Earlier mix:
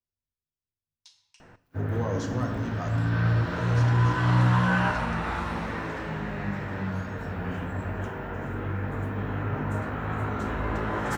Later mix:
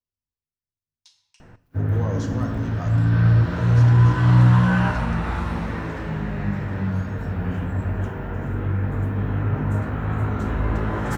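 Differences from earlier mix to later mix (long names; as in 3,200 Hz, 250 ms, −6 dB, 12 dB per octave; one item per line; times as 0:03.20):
background: add low-shelf EQ 240 Hz +10 dB
master: add parametric band 14,000 Hz +3.5 dB 0.73 octaves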